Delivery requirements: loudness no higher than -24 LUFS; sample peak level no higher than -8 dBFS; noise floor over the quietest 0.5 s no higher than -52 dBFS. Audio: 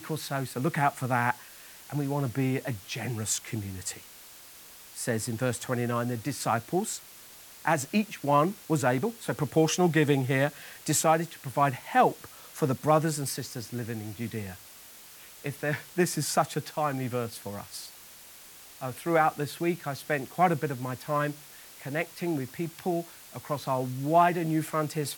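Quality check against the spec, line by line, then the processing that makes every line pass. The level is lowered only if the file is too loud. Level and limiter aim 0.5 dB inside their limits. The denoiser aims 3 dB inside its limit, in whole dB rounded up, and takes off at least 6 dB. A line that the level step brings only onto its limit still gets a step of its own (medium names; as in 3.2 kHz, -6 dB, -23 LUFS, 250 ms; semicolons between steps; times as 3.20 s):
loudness -29.0 LUFS: pass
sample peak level -10.5 dBFS: pass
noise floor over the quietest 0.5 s -50 dBFS: fail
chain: noise reduction 6 dB, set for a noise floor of -50 dBFS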